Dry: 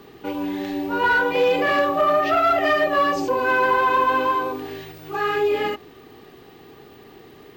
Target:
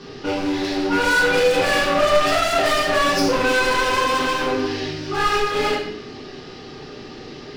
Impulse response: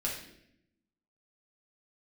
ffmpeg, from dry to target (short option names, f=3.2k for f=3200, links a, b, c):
-filter_complex "[0:a]lowpass=f=5.3k:t=q:w=4.1,asoftclip=type=hard:threshold=-25dB[a];[1:a]atrim=start_sample=2205[b];[a][b]afir=irnorm=-1:irlink=0,volume=4dB"